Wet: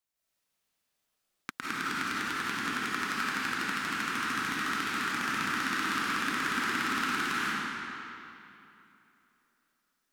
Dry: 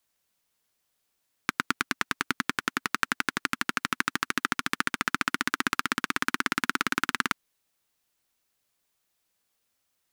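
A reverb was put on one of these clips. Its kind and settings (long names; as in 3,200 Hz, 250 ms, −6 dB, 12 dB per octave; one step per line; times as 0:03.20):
comb and all-pass reverb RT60 2.9 s, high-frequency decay 0.8×, pre-delay 120 ms, DRR −9.5 dB
level −11.5 dB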